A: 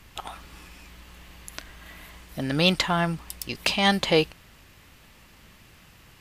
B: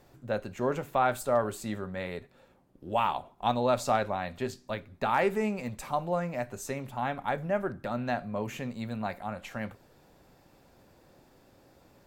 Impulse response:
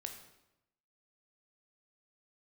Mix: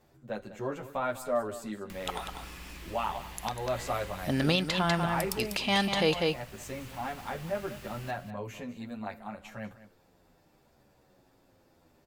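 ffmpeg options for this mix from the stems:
-filter_complex "[0:a]acrusher=bits=9:mix=0:aa=0.000001,acompressor=mode=upward:threshold=-43dB:ratio=2.5,adelay=1900,volume=0.5dB,asplit=2[link_01][link_02];[link_02]volume=-7dB[link_03];[1:a]asplit=2[link_04][link_05];[link_05]adelay=9.7,afreqshift=-0.67[link_06];[link_04][link_06]amix=inputs=2:normalize=1,volume=-2dB,asplit=2[link_07][link_08];[link_08]volume=-15dB[link_09];[link_03][link_09]amix=inputs=2:normalize=0,aecho=0:1:196:1[link_10];[link_01][link_07][link_10]amix=inputs=3:normalize=0,alimiter=limit=-15dB:level=0:latency=1:release=319"

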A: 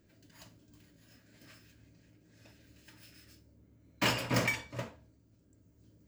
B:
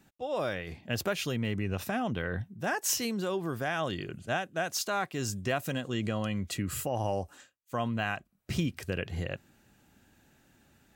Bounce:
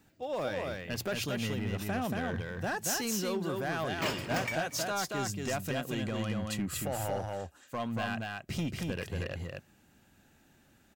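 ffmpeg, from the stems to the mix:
ffmpeg -i stem1.wav -i stem2.wav -filter_complex "[0:a]volume=-4.5dB,asplit=2[link_01][link_02];[link_02]volume=-21dB[link_03];[1:a]asoftclip=type=hard:threshold=-26.5dB,volume=-2dB,asplit=2[link_04][link_05];[link_05]volume=-3dB[link_06];[link_03][link_06]amix=inputs=2:normalize=0,aecho=0:1:231:1[link_07];[link_01][link_04][link_07]amix=inputs=3:normalize=0,bandreject=frequency=60:width_type=h:width=6,bandreject=frequency=120:width_type=h:width=6" out.wav

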